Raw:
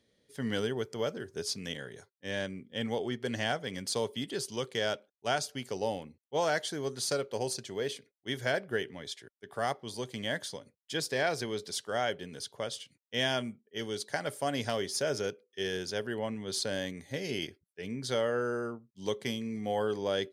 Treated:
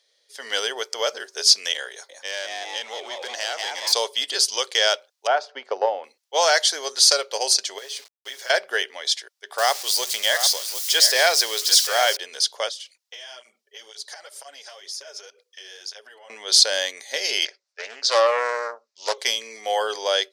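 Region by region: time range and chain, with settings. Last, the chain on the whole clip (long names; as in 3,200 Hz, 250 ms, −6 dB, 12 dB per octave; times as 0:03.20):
0:01.91–0:03.93: phase distortion by the signal itself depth 0.087 ms + echo with shifted repeats 179 ms, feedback 47%, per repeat +130 Hz, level −6.5 dB + downward compressor 3 to 1, threshold −38 dBFS
0:05.27–0:06.04: low-pass filter 1,300 Hz + transient designer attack +7 dB, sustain +1 dB
0:07.78–0:08.50: comb filter 7.3 ms, depth 77% + downward compressor 10 to 1, threshold −42 dBFS + bit-depth reduction 10 bits, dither none
0:09.58–0:12.17: spike at every zero crossing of −33.5 dBFS + single-tap delay 746 ms −11 dB
0:12.69–0:16.30: downward compressor 10 to 1, threshold −46 dBFS + through-zero flanger with one copy inverted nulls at 2 Hz, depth 4.4 ms
0:17.45–0:19.18: loudspeaker in its box 330–6,600 Hz, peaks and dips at 330 Hz −8 dB, 580 Hz +6 dB, 3,200 Hz −7 dB + highs frequency-modulated by the lows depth 0.4 ms
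whole clip: high-pass filter 560 Hz 24 dB per octave; parametric band 5,100 Hz +10.5 dB 1.2 octaves; automatic gain control gain up to 7.5 dB; level +4 dB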